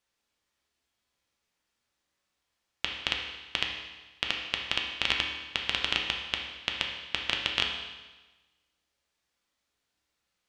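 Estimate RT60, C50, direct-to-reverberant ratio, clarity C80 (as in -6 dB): 1.2 s, 4.0 dB, 0.5 dB, 6.5 dB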